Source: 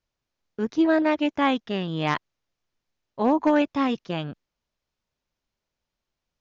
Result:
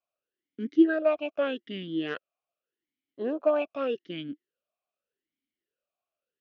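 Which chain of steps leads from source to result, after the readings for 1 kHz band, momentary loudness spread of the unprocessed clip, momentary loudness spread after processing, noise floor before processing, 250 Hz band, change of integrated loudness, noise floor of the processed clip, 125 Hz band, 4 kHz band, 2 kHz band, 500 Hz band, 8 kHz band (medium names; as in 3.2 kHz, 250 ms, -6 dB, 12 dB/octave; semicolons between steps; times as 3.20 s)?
-13.0 dB, 11 LU, 16 LU, -85 dBFS, -5.0 dB, -4.5 dB, under -85 dBFS, -13.0 dB, -7.0 dB, -6.5 dB, -1.5 dB, no reading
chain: talking filter a-i 0.83 Hz; trim +6 dB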